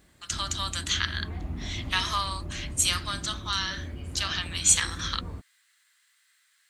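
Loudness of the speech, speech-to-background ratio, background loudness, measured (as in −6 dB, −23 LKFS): −27.5 LKFS, 11.5 dB, −39.0 LKFS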